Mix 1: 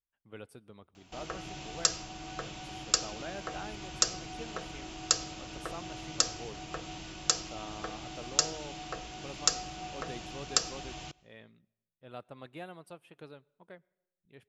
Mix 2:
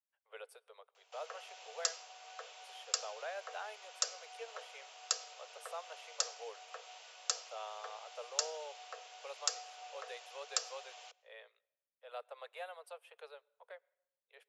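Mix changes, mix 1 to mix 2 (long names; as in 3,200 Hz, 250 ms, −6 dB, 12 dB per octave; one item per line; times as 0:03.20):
background −8.0 dB
master: add Butterworth high-pass 450 Hz 96 dB per octave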